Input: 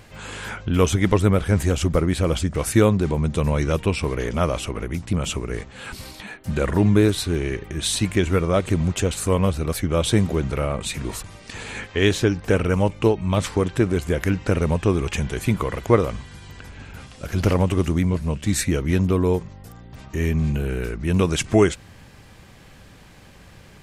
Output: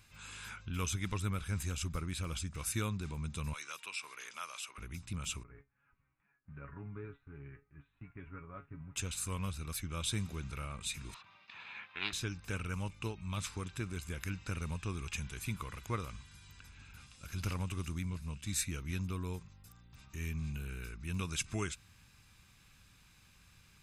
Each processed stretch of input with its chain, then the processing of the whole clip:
3.53–4.78 HPF 820 Hz + three-band squash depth 40%
5.43–8.96 inverse Chebyshev low-pass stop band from 4700 Hz, stop band 50 dB + gate -31 dBFS, range -13 dB + resonator 140 Hz, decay 0.15 s, mix 90%
11.14–12.13 gate with hold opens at -31 dBFS, closes at -39 dBFS + speaker cabinet 270–3500 Hz, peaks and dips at 270 Hz -8 dB, 430 Hz -8 dB, 690 Hz +6 dB, 1000 Hz +7 dB + Doppler distortion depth 0.4 ms
whole clip: passive tone stack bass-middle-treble 5-5-5; comb 0.8 ms, depth 39%; gain -4.5 dB

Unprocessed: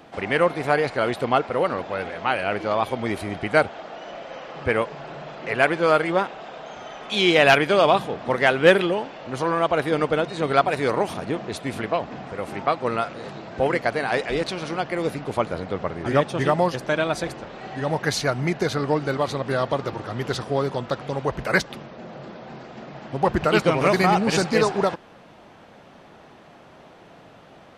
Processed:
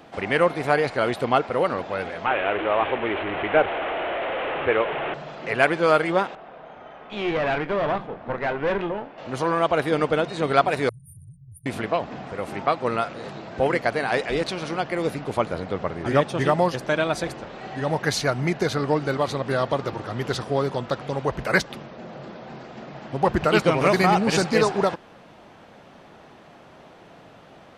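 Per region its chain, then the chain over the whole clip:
2.26–5.14 delta modulation 16 kbps, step -21.5 dBFS + resonant low shelf 270 Hz -7.5 dB, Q 1.5
6.35–9.18 doubler 25 ms -13.5 dB + tube stage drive 19 dB, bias 0.8 + LPF 2100 Hz
10.89–11.66 brick-wall FIR band-stop 150–8800 Hz + compressor 3:1, threshold -42 dBFS
whole clip: dry

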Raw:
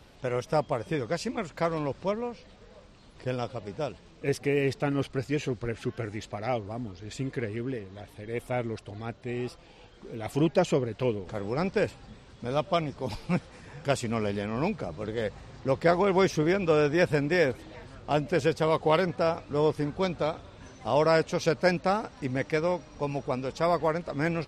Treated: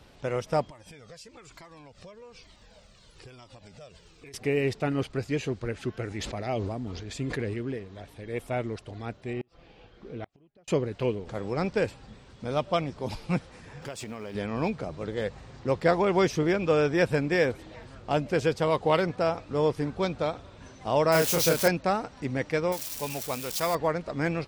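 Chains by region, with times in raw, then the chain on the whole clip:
0.7–4.34 high shelf 2600 Hz +11 dB + compressor 12:1, threshold -39 dBFS + cascading flanger falling 1.1 Hz
6.08–7.54 dynamic EQ 1300 Hz, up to -4 dB, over -40 dBFS, Q 0.75 + sustainer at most 27 dB/s
9.33–10.68 notch 920 Hz, Q 11 + flipped gate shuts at -24 dBFS, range -37 dB + air absorption 140 m
13.82–14.35 G.711 law mismatch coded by mu + low shelf 140 Hz -9.5 dB + compressor 16:1, threshold -33 dBFS
21.12–21.68 switching spikes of -20.5 dBFS + doubler 30 ms -3 dB
22.72–23.75 switching spikes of -28.5 dBFS + tilt shelf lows -5 dB, about 1300 Hz
whole clip: dry

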